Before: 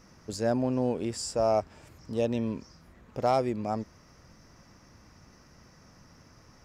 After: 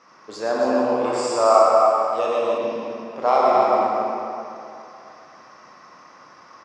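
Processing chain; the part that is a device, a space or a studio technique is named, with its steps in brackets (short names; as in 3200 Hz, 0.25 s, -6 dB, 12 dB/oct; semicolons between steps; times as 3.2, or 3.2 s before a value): station announcement (BPF 450–4300 Hz; bell 1100 Hz +9.5 dB 0.37 oct; loudspeakers at several distances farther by 40 m -5 dB, 94 m -5 dB; reverb RT60 2.8 s, pre-delay 19 ms, DRR -3.5 dB); 1.05–2.58 thirty-one-band EQ 200 Hz -12 dB, 1250 Hz +10 dB, 8000 Hz +10 dB; gain +4.5 dB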